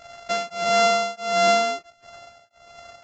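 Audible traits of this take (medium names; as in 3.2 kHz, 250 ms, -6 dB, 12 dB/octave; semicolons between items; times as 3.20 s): a buzz of ramps at a fixed pitch in blocks of 64 samples; tremolo triangle 1.5 Hz, depth 100%; Vorbis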